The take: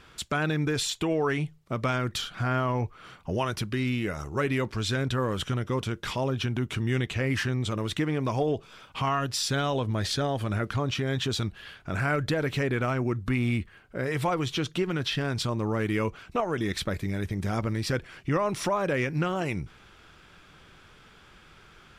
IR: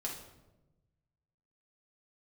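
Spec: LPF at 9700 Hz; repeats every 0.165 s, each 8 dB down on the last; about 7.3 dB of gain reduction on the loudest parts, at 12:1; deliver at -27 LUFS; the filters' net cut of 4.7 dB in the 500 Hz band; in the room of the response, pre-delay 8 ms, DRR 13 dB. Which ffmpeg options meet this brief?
-filter_complex "[0:a]lowpass=9.7k,equalizer=f=500:t=o:g=-6,acompressor=threshold=-31dB:ratio=12,aecho=1:1:165|330|495|660|825:0.398|0.159|0.0637|0.0255|0.0102,asplit=2[a][b];[1:a]atrim=start_sample=2205,adelay=8[c];[b][c]afir=irnorm=-1:irlink=0,volume=-14dB[d];[a][d]amix=inputs=2:normalize=0,volume=8dB"

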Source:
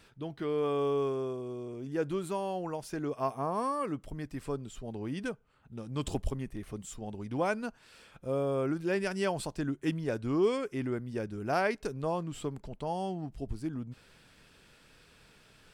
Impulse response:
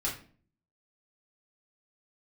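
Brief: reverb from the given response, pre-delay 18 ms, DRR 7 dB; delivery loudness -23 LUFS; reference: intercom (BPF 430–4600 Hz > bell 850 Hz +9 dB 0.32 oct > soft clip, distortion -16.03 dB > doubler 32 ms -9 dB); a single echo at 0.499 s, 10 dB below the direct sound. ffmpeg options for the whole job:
-filter_complex "[0:a]aecho=1:1:499:0.316,asplit=2[a][b];[1:a]atrim=start_sample=2205,adelay=18[c];[b][c]afir=irnorm=-1:irlink=0,volume=-12dB[d];[a][d]amix=inputs=2:normalize=0,highpass=430,lowpass=4.6k,equalizer=f=850:t=o:w=0.32:g=9,asoftclip=threshold=-23dB,asplit=2[e][f];[f]adelay=32,volume=-9dB[g];[e][g]amix=inputs=2:normalize=0,volume=12.5dB"

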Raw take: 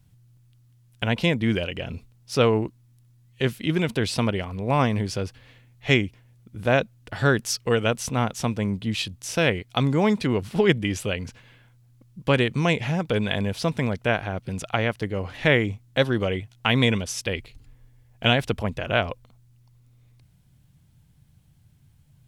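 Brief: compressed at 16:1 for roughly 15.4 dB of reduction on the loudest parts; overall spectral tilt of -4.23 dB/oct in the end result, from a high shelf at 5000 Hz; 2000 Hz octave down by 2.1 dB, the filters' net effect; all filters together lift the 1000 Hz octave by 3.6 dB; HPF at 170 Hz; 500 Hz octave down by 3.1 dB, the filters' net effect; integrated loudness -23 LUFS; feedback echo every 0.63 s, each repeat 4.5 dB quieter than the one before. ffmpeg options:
-af "highpass=170,equalizer=f=500:t=o:g=-5.5,equalizer=f=1k:t=o:g=8,equalizer=f=2k:t=o:g=-4.5,highshelf=f=5k:g=-3.5,acompressor=threshold=-31dB:ratio=16,aecho=1:1:630|1260|1890|2520|3150|3780|4410|5040|5670:0.596|0.357|0.214|0.129|0.0772|0.0463|0.0278|0.0167|0.01,volume=13.5dB"

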